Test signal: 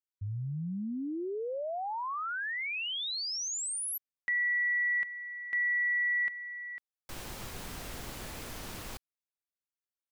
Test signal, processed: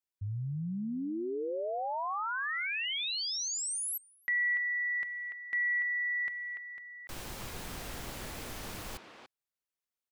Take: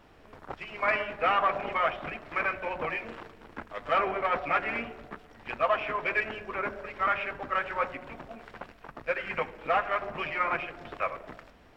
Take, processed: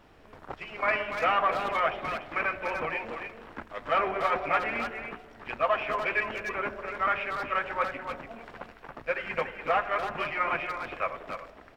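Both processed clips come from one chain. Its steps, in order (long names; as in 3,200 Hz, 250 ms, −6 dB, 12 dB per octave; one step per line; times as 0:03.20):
far-end echo of a speakerphone 290 ms, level −6 dB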